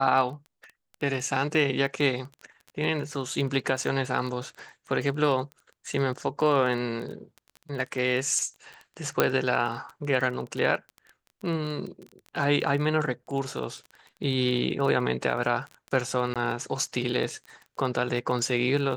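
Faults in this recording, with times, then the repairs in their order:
crackle 21 per s -33 dBFS
9.20 s: pop -6 dBFS
16.34–16.36 s: dropout 17 ms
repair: de-click; interpolate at 16.34 s, 17 ms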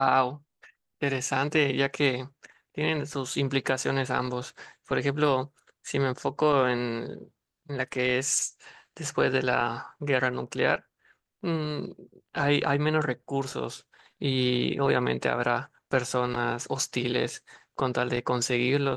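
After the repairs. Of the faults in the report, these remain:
nothing left

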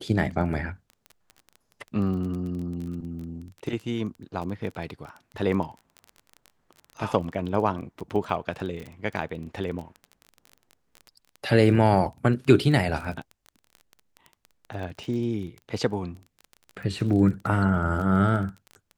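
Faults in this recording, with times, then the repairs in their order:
crackle 20 per s -33 dBFS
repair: de-click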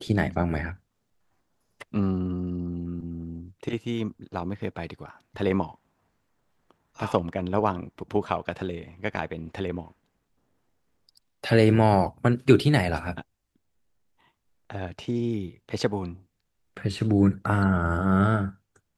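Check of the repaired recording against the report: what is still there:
nothing left

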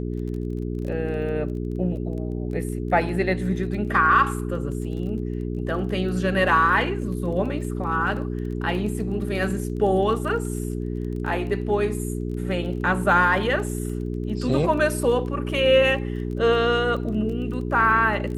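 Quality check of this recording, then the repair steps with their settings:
crackle 20 per s -33 dBFS
hum 60 Hz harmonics 7 -28 dBFS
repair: de-click; de-hum 60 Hz, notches 7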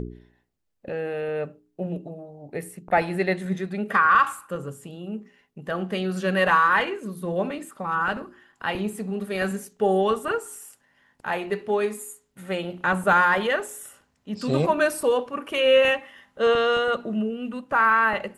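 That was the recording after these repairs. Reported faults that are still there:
nothing left

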